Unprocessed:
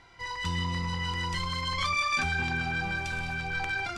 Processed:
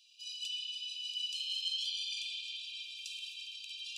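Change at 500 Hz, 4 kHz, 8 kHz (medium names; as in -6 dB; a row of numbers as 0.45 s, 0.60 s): under -40 dB, +0.5 dB, -4.5 dB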